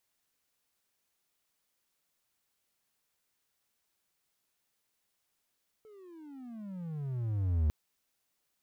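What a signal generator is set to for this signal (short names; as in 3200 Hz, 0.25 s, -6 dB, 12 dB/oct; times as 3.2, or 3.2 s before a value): gliding synth tone triangle, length 1.85 s, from 443 Hz, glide -31 st, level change +28 dB, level -22 dB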